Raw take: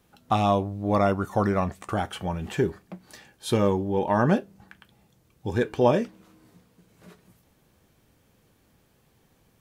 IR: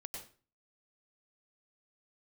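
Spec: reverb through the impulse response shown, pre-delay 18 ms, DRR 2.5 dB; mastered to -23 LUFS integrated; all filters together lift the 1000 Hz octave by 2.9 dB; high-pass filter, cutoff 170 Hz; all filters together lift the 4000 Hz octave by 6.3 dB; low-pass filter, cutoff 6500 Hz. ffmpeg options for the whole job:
-filter_complex "[0:a]highpass=170,lowpass=6.5k,equalizer=f=1k:t=o:g=3.5,equalizer=f=4k:t=o:g=8,asplit=2[a][b];[1:a]atrim=start_sample=2205,adelay=18[c];[b][c]afir=irnorm=-1:irlink=0,volume=0.5dB[d];[a][d]amix=inputs=2:normalize=0"

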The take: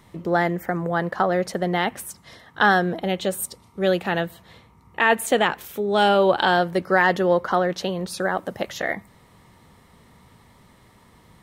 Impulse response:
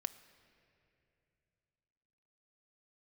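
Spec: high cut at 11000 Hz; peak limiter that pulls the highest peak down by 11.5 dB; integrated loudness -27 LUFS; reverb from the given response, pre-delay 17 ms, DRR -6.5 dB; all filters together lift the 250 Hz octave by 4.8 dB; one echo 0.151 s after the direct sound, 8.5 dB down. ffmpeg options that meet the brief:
-filter_complex "[0:a]lowpass=11k,equalizer=f=250:t=o:g=8,alimiter=limit=-14dB:level=0:latency=1,aecho=1:1:151:0.376,asplit=2[a][b];[1:a]atrim=start_sample=2205,adelay=17[c];[b][c]afir=irnorm=-1:irlink=0,volume=8dB[d];[a][d]amix=inputs=2:normalize=0,volume=-10dB"

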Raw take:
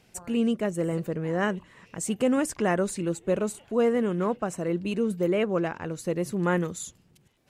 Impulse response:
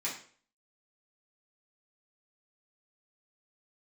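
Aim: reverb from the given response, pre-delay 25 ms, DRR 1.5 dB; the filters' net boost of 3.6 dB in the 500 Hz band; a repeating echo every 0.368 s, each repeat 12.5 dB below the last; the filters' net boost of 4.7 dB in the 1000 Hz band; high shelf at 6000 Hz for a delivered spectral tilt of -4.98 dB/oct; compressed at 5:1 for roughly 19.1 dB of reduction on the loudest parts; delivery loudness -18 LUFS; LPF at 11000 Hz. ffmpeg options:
-filter_complex "[0:a]lowpass=11k,equalizer=f=500:t=o:g=3,equalizer=f=1k:t=o:g=5,highshelf=f=6k:g=5.5,acompressor=threshold=-38dB:ratio=5,aecho=1:1:368|736|1104:0.237|0.0569|0.0137,asplit=2[a][b];[1:a]atrim=start_sample=2205,adelay=25[c];[b][c]afir=irnorm=-1:irlink=0,volume=-5.5dB[d];[a][d]amix=inputs=2:normalize=0,volume=20.5dB"

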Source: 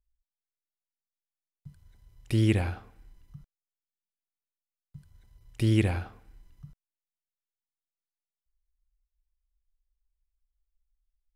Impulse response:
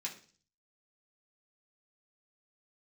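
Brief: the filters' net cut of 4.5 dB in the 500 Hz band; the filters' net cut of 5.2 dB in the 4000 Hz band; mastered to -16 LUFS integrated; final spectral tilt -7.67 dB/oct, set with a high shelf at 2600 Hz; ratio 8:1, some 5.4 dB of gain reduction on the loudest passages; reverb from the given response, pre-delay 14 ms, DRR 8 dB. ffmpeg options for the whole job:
-filter_complex "[0:a]equalizer=f=500:t=o:g=-8,highshelf=f=2.6k:g=-3,equalizer=f=4k:t=o:g=-5,acompressor=threshold=-26dB:ratio=8,asplit=2[a][b];[1:a]atrim=start_sample=2205,adelay=14[c];[b][c]afir=irnorm=-1:irlink=0,volume=-8dB[d];[a][d]amix=inputs=2:normalize=0,volume=17.5dB"

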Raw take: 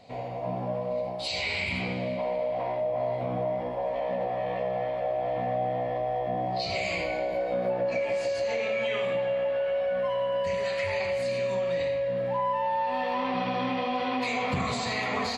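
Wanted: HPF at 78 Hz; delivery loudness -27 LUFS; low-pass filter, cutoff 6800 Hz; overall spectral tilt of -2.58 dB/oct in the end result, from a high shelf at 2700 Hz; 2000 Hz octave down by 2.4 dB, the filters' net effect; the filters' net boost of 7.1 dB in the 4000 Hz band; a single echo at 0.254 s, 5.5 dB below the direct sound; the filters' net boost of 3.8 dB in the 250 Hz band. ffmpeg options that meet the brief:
-af "highpass=78,lowpass=6.8k,equalizer=f=250:t=o:g=4.5,equalizer=f=2k:t=o:g=-8,highshelf=f=2.7k:g=7,equalizer=f=4k:t=o:g=5.5,aecho=1:1:254:0.531,volume=0.5dB"

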